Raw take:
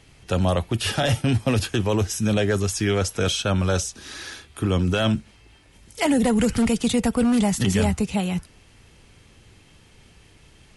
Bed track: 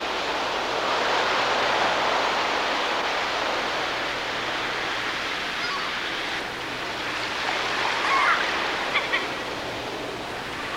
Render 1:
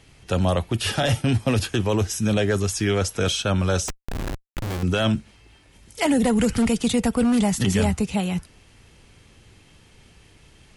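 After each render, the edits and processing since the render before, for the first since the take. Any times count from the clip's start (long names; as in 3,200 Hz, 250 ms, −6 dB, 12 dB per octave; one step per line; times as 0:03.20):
0:03.88–0:04.83: comparator with hysteresis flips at −29 dBFS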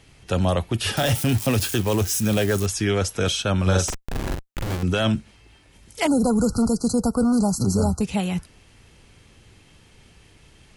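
0:00.97–0:02.66: spike at every zero crossing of −22.5 dBFS
0:03.62–0:04.75: double-tracking delay 43 ms −2.5 dB
0:06.07–0:08.01: linear-phase brick-wall band-stop 1,500–4,000 Hz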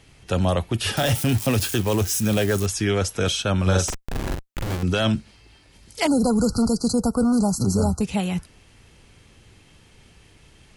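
0:04.87–0:06.93: parametric band 4,600 Hz +6.5 dB 0.41 octaves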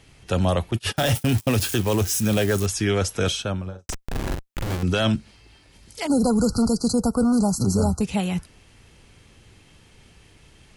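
0:00.71–0:01.53: noise gate −26 dBFS, range −26 dB
0:03.23–0:03.89: fade out and dull
0:05.16–0:06.10: downward compressor 1.5 to 1, threshold −36 dBFS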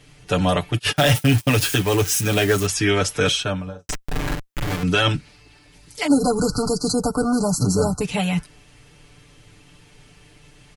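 comb filter 6.8 ms, depth 93%
dynamic equaliser 2,100 Hz, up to +5 dB, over −38 dBFS, Q 0.79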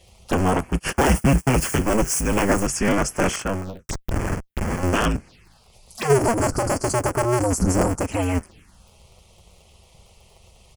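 sub-harmonics by changed cycles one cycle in 2, inverted
phaser swept by the level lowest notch 230 Hz, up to 3,800 Hz, full sweep at −22 dBFS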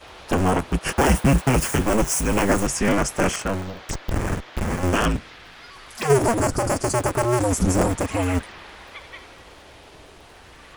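mix in bed track −16.5 dB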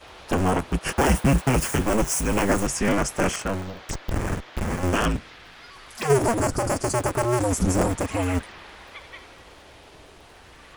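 level −2 dB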